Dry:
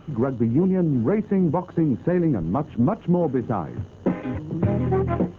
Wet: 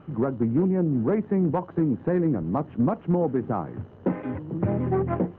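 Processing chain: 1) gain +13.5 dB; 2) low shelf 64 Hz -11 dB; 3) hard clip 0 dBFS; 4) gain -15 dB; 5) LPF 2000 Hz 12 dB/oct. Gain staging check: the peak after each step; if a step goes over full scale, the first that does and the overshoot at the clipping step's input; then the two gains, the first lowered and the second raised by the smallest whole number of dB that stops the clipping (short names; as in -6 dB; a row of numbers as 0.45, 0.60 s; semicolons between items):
+4.0, +3.5, 0.0, -15.0, -14.5 dBFS; step 1, 3.5 dB; step 1 +9.5 dB, step 4 -11 dB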